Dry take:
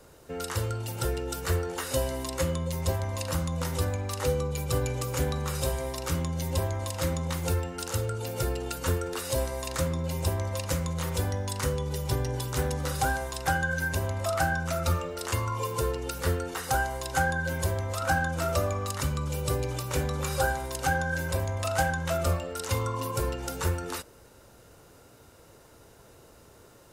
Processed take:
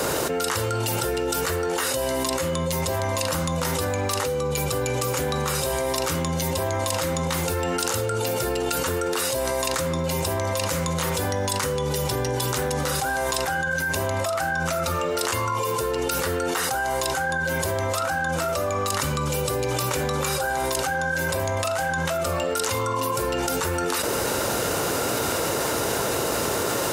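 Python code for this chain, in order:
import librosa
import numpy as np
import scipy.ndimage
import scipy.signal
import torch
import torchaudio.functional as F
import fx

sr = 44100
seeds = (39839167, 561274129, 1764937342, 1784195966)

y = fx.highpass(x, sr, hz=280.0, slope=6)
y = fx.env_flatten(y, sr, amount_pct=100)
y = y * 10.0 ** (-2.0 / 20.0)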